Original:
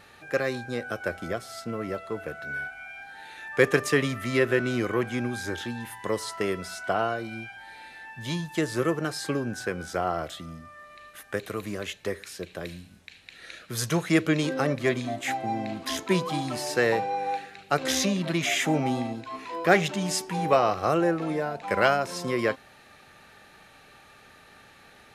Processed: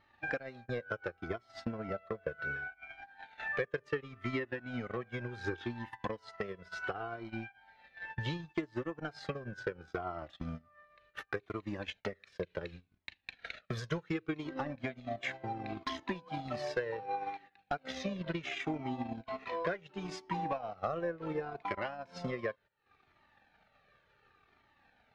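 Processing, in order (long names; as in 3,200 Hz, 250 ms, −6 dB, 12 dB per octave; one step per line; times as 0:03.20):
transient designer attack +11 dB, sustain −12 dB
low-shelf EQ 240 Hz −2.5 dB
noise gate −41 dBFS, range −17 dB
downward compressor 6 to 1, threshold −36 dBFS, peak gain reduction 27.5 dB
gain into a clipping stage and back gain 27 dB
high-frequency loss of the air 220 metres
flanger whose copies keep moving one way falling 0.69 Hz
level +7.5 dB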